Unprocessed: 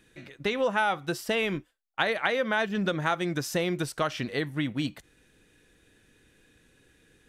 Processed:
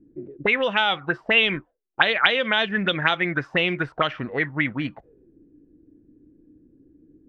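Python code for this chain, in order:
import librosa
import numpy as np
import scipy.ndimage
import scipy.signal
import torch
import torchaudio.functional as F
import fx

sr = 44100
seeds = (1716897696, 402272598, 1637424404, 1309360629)

y = fx.envelope_lowpass(x, sr, base_hz=290.0, top_hz=3300.0, q=6.0, full_db=-22.5, direction='up')
y = y * librosa.db_to_amplitude(2.0)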